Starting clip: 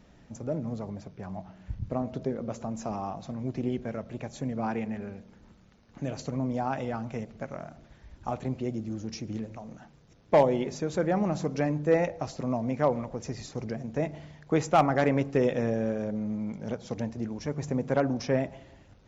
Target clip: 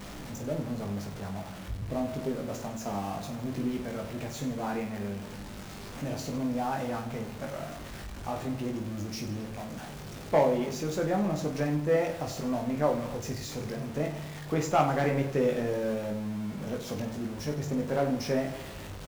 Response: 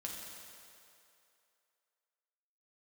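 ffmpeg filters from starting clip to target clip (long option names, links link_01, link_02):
-af "aeval=exprs='val(0)+0.5*0.02*sgn(val(0))':channel_layout=same,aecho=1:1:20|50|95|162.5|263.8:0.631|0.398|0.251|0.158|0.1,volume=-5dB"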